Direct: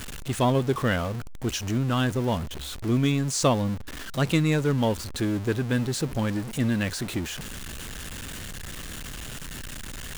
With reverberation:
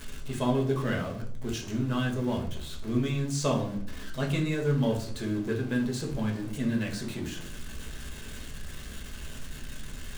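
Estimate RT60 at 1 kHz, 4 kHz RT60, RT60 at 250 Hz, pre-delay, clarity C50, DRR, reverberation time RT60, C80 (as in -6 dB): 0.45 s, 0.40 s, 0.80 s, 5 ms, 8.5 dB, -1.0 dB, 0.55 s, 13.0 dB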